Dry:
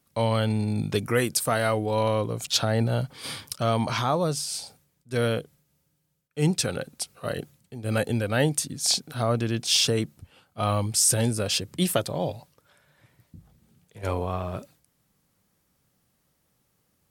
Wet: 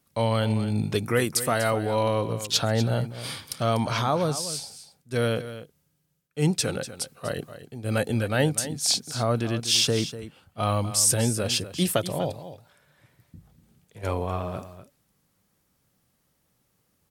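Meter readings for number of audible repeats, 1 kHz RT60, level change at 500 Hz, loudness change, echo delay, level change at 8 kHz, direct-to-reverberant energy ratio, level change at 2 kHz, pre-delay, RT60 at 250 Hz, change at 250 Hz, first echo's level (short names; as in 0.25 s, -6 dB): 1, none, 0.0 dB, 0.0 dB, 0.245 s, 0.0 dB, none, 0.0 dB, none, none, 0.0 dB, -13.0 dB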